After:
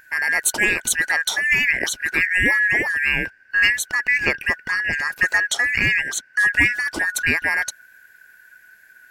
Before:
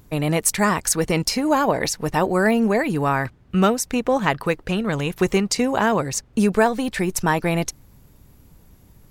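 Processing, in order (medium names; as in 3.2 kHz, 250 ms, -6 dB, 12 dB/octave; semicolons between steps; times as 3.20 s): four frequency bands reordered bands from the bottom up 2143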